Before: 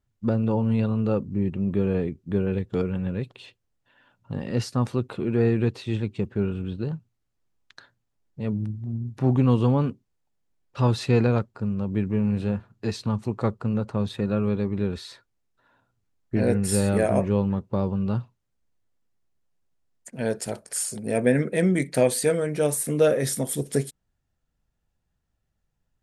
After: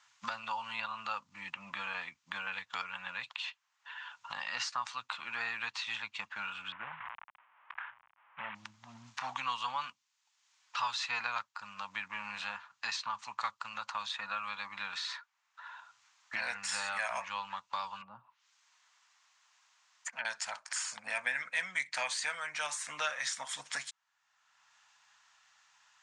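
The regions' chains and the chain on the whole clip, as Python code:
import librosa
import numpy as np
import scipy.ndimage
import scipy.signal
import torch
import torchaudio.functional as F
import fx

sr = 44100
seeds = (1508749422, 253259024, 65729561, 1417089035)

y = fx.chain(x, sr, fx.cvsd(bps=16000),
    fx.lowpass(hz=1500.0, slope=12),
    fx.sustainer(db_per_s=81.0), at=(6.72, 8.55))
y = fx.chain(y, sr, fx.env_lowpass_down(base_hz=360.0, full_db=-23.0),
    fx.highpass(hz=49.0, slope=12),
    fx.low_shelf(hz=130.0, db=-7.0), at=(18.01, 20.25))
y = scipy.signal.sosfilt(scipy.signal.ellip(3, 1.0, 40, [980.0, 6900.0], 'bandpass', fs=sr, output='sos'), y)
y = fx.band_squash(y, sr, depth_pct=70)
y = y * librosa.db_to_amplitude(3.0)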